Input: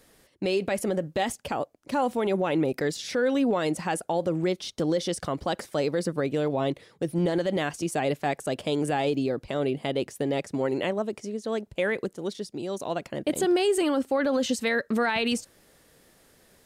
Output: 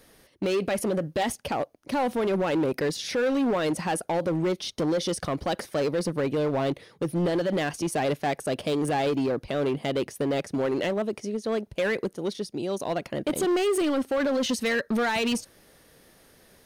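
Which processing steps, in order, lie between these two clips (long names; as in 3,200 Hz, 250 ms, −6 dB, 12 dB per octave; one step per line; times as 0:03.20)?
notch filter 7,500 Hz, Q 5
in parallel at −4 dB: wave folding −25.5 dBFS
on the sum: level −1.5 dB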